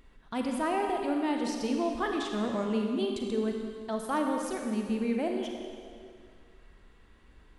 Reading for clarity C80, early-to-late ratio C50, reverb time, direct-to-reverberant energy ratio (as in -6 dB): 3.5 dB, 3.0 dB, 2.1 s, 2.0 dB